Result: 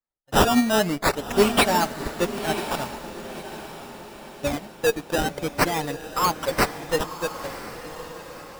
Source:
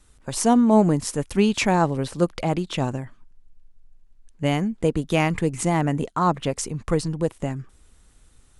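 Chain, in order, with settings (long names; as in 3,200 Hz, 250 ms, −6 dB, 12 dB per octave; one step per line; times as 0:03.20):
spectral dynamics exaggerated over time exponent 2
bass and treble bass −14 dB, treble +15 dB
in parallel at −8 dB: fuzz pedal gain 35 dB, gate −39 dBFS
on the sum: flanger 1.1 Hz, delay 0.6 ms, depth 4.8 ms, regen +66%
sample-and-hold swept by an LFO 14×, swing 100% 0.45 Hz
soft clipping −13 dBFS, distortion −20 dB
feedback delay with all-pass diffusion 1,023 ms, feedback 52%, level −6.5 dB
on a send at −19 dB: convolution reverb RT60 0.90 s, pre-delay 4 ms
on the sum: expander for the loud parts 1.5 to 1, over −34 dBFS
level +4.5 dB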